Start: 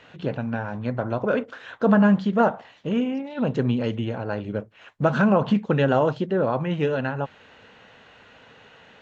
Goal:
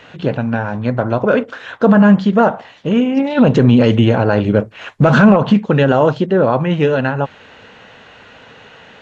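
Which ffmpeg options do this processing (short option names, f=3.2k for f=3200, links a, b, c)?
-filter_complex "[0:a]asplit=3[a][b][c];[a]afade=t=out:st=3.16:d=0.02[d];[b]acontrast=78,afade=t=in:st=3.16:d=0.02,afade=t=out:st=5.35:d=0.02[e];[c]afade=t=in:st=5.35:d=0.02[f];[d][e][f]amix=inputs=3:normalize=0,alimiter=level_in=10.5dB:limit=-1dB:release=50:level=0:latency=1,volume=-1dB" -ar 32000 -c:a ac3 -b:a 64k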